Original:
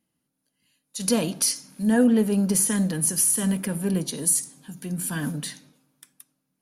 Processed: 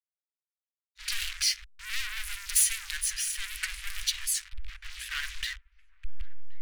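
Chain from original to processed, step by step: level-crossing sampler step -38 dBFS; in parallel at 0 dB: compressor 10:1, threshold -33 dBFS, peak gain reduction 18 dB; on the sum: high shelf 3000 Hz -8 dB; low-pass opened by the level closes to 500 Hz, open at -18.5 dBFS; sample leveller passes 3; soft clip -21.5 dBFS, distortion -9 dB; inverse Chebyshev band-stop 180–590 Hz, stop band 70 dB; bell 130 Hz -9.5 dB 1.5 oct; on a send: dark delay 1.076 s, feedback 49%, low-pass 1800 Hz, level -24 dB; on the sum: record warp 78 rpm, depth 160 cents; gain +3.5 dB

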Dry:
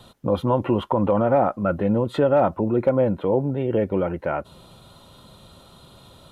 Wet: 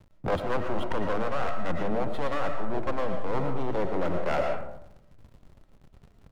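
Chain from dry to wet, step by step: one-sided fold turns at -21.5 dBFS; notches 50/100/150/200/250/300/350 Hz; backlash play -35 dBFS; digital reverb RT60 0.78 s, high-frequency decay 0.45×, pre-delay 75 ms, DRR 5 dB; reverse; compressor 10:1, threshold -24 dBFS, peak gain reduction 14 dB; reverse; gain +3 dB

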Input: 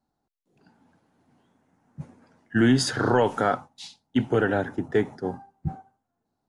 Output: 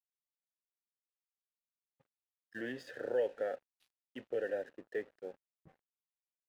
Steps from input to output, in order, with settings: vowel filter e; crossover distortion -56.5 dBFS; gain -4 dB

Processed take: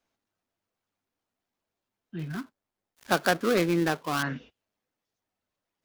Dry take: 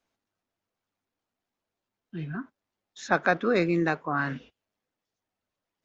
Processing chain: 2.19–4.23 switching dead time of 0.17 ms

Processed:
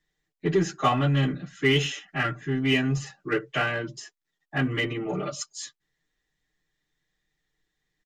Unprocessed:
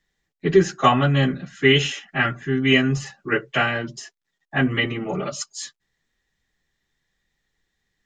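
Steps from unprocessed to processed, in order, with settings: bell 350 Hz +4.5 dB 0.38 oct; comb 6.6 ms, depth 49%; in parallel at -7 dB: hard clip -19 dBFS, distortion -6 dB; on the sum: gain -8.5 dB

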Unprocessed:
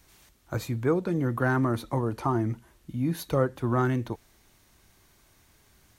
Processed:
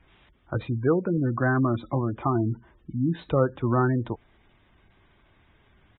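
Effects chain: downsampling 8000 Hz; spectral gate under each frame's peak -25 dB strong; 1.17–2.4 notch comb 460 Hz; gain +2.5 dB

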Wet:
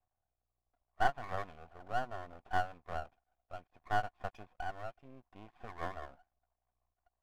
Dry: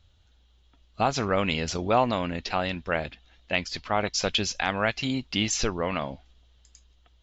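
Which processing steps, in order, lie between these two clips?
vocal tract filter a; rotary speaker horn 0.65 Hz, later 6 Hz, at 5.73; half-wave rectifier; gain +5.5 dB

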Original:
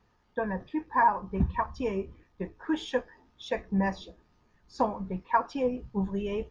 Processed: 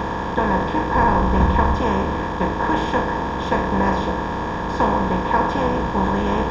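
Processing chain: per-bin compression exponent 0.2; 0.95–1.76 low shelf 83 Hz +12 dB

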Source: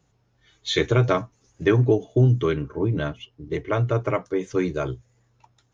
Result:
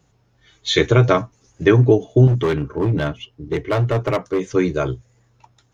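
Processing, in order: 2.27–4.41 hard clip -19.5 dBFS, distortion -15 dB; gain +5.5 dB

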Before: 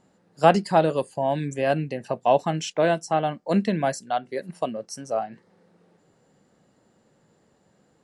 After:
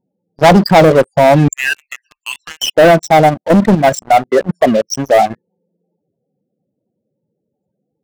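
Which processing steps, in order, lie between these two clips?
1.48–2.7 inverse Chebyshev band-stop 110–700 Hz, stop band 50 dB; loudest bins only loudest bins 16; sample leveller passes 5; 3.29–3.96 level quantiser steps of 9 dB; gain +2.5 dB

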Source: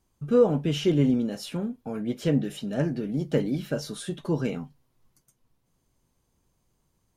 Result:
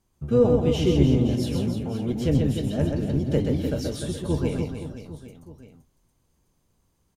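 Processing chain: octaver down 1 oct, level -2 dB; dynamic EQ 1500 Hz, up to -6 dB, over -49 dBFS, Q 1.5; on a send: reverse bouncing-ball echo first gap 0.13 s, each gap 1.3×, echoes 5

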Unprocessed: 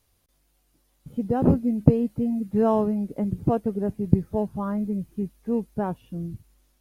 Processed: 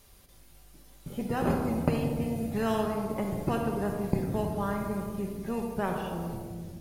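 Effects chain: shoebox room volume 1100 m³, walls mixed, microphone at 1.2 m; spectral compressor 2:1; gain -8.5 dB

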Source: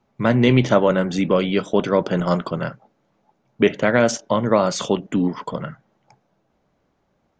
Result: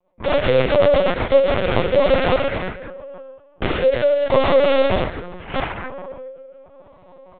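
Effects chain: spectral trails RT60 1.64 s; bell 250 Hz -9 dB 0.71 oct; notch 1600 Hz, Q 5.9; comb 5.6 ms, depth 69%; de-hum 90.13 Hz, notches 2; reverse; upward compressor, threshold -27 dBFS; reverse; resonator 65 Hz, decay 0.4 s, harmonics all, mix 80%; small resonant body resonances 540/930 Hz, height 15 dB, ringing for 25 ms; added harmonics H 2 -33 dB, 6 -20 dB, 7 -10 dB, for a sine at -6.5 dBFS; rotary speaker horn 8 Hz, later 0.8 Hz, at 1.17; LPC vocoder at 8 kHz pitch kept; gain -2.5 dB

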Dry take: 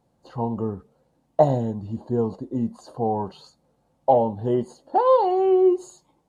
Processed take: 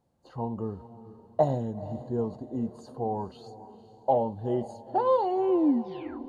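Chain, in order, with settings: tape stop at the end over 0.77 s; bell 76 Hz +9 dB 0.36 oct; diffused feedback echo 0.463 s, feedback 44%, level -15 dB; gain -6.5 dB

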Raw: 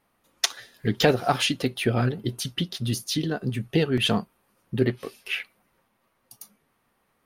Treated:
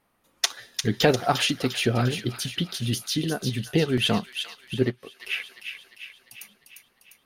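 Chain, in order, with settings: thin delay 0.35 s, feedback 56%, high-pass 2000 Hz, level -5.5 dB; 4.74–5.2 upward expander 1.5:1, over -42 dBFS

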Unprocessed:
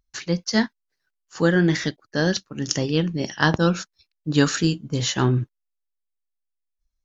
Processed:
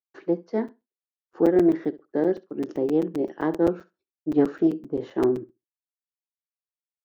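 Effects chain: expander -45 dBFS; in parallel at +2 dB: compressor, threshold -26 dBFS, peak gain reduction 13.5 dB; on the sum: ladder band-pass 410 Hz, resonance 55%; on a send: flutter echo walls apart 11.5 m, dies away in 0.22 s; on the sum: crackling interface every 0.13 s, samples 256, zero, from 0.68; Doppler distortion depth 0.14 ms; gain +6 dB

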